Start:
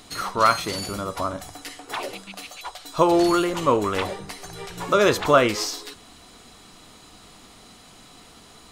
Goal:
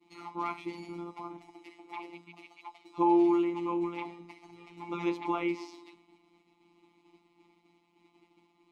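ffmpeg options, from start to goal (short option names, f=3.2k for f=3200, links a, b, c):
-filter_complex "[0:a]asplit=3[a][b][c];[a]bandpass=f=300:t=q:w=8,volume=0dB[d];[b]bandpass=f=870:t=q:w=8,volume=-6dB[e];[c]bandpass=f=2.24k:t=q:w=8,volume=-9dB[f];[d][e][f]amix=inputs=3:normalize=0,agate=range=-33dB:threshold=-56dB:ratio=3:detection=peak,afftfilt=real='hypot(re,im)*cos(PI*b)':imag='0':win_size=1024:overlap=0.75,volume=4.5dB"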